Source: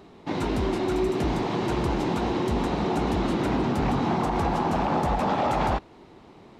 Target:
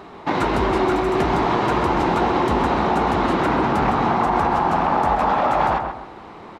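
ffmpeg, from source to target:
ffmpeg -i in.wav -filter_complex "[0:a]equalizer=frequency=1200:width=0.58:gain=11,acompressor=threshold=-21dB:ratio=6,asplit=2[link_01][link_02];[link_02]adelay=132,lowpass=frequency=2300:poles=1,volume=-5.5dB,asplit=2[link_03][link_04];[link_04]adelay=132,lowpass=frequency=2300:poles=1,volume=0.35,asplit=2[link_05][link_06];[link_06]adelay=132,lowpass=frequency=2300:poles=1,volume=0.35,asplit=2[link_07][link_08];[link_08]adelay=132,lowpass=frequency=2300:poles=1,volume=0.35[link_09];[link_01][link_03][link_05][link_07][link_09]amix=inputs=5:normalize=0,volume=4.5dB" out.wav

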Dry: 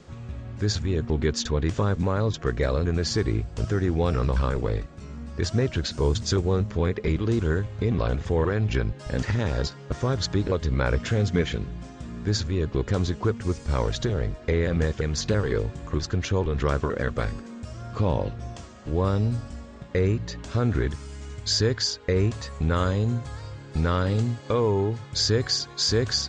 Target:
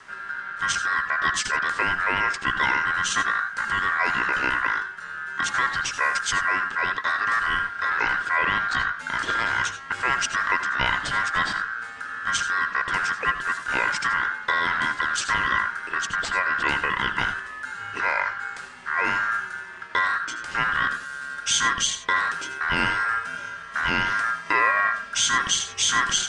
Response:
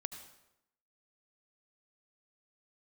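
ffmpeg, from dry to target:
-filter_complex "[0:a]acrossover=split=270|1200|3000[link_01][link_02][link_03][link_04];[link_01]aeval=exprs='0.0668*(abs(mod(val(0)/0.0668+3,4)-2)-1)':channel_layout=same[link_05];[link_05][link_02][link_03][link_04]amix=inputs=4:normalize=0,aeval=exprs='val(0)*sin(2*PI*1500*n/s)':channel_layout=same[link_06];[1:a]atrim=start_sample=2205,atrim=end_sample=4410,asetrate=43218,aresample=44100[link_07];[link_06][link_07]afir=irnorm=-1:irlink=0,volume=7.5dB"

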